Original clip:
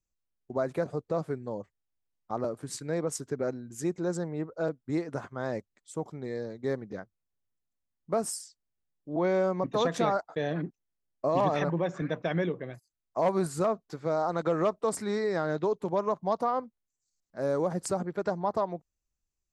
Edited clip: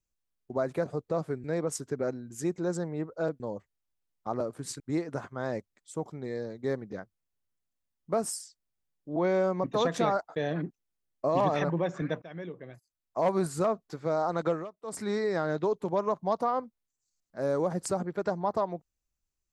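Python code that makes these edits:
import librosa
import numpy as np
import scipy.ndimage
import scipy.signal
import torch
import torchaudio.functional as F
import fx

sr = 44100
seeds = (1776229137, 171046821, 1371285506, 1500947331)

y = fx.edit(x, sr, fx.move(start_s=1.44, length_s=1.4, to_s=4.8),
    fx.fade_in_from(start_s=12.22, length_s=1.08, floor_db=-18.0),
    fx.fade_down_up(start_s=14.5, length_s=0.5, db=-21.0, fade_s=0.24, curve='qua'), tone=tone)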